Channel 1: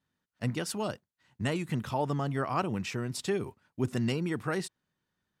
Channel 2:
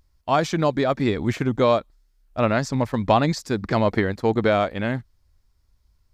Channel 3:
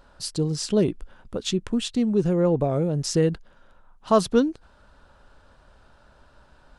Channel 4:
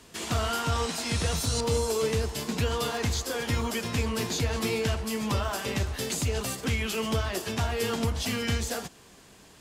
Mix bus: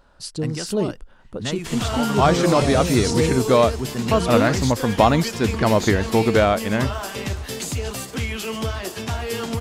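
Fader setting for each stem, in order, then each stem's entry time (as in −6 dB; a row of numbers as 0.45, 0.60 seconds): +2.0, +2.5, −1.5, +2.0 decibels; 0.00, 1.90, 0.00, 1.50 seconds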